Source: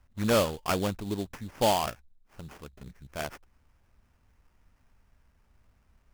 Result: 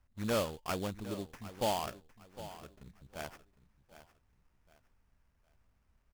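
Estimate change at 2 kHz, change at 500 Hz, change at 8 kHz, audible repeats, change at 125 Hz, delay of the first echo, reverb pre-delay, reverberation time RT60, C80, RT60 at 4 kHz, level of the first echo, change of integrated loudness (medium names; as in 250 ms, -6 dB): -8.0 dB, -8.0 dB, -8.0 dB, 3, -8.0 dB, 758 ms, no reverb, no reverb, no reverb, no reverb, -15.0 dB, -8.5 dB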